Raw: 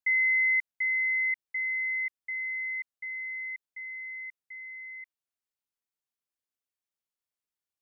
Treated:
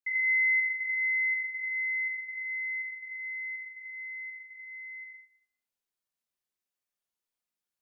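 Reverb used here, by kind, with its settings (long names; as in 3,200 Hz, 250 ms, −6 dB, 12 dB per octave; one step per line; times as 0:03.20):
four-comb reverb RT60 0.61 s, combs from 31 ms, DRR −6.5 dB
level −6 dB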